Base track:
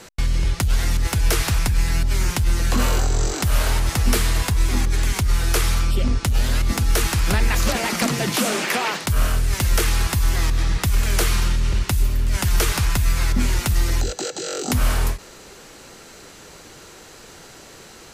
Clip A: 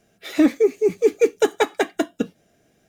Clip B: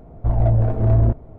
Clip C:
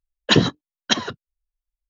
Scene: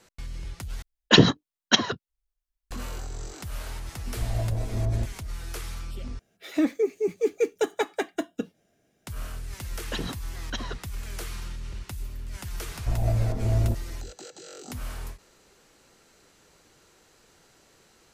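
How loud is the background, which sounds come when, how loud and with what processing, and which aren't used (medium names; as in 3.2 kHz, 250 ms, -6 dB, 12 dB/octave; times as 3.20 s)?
base track -16.5 dB
0.82 s: replace with C
3.93 s: add B -11.5 dB
6.19 s: replace with A -7.5 dB
9.63 s: add C -7.5 dB + compression, threshold -21 dBFS
12.62 s: add B -8 dB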